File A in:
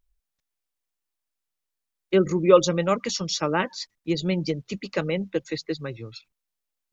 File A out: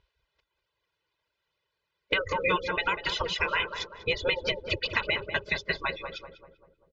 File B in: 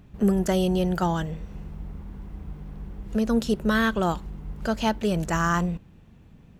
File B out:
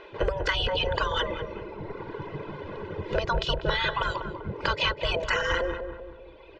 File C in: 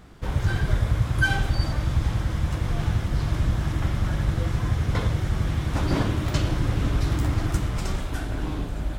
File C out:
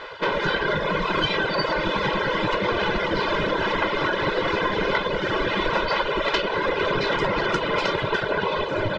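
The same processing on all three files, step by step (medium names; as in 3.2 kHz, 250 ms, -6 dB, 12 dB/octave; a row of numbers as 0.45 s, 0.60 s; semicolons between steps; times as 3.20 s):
spectral gate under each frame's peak -15 dB weak; low-pass 4 kHz 24 dB/octave; reverb removal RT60 1.4 s; comb 2 ms, depth 76%; compression 10:1, threshold -39 dBFS; filtered feedback delay 195 ms, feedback 54%, low-pass 1.1 kHz, level -6 dB; peak normalisation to -9 dBFS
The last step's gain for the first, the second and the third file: +15.0 dB, +16.0 dB, +19.0 dB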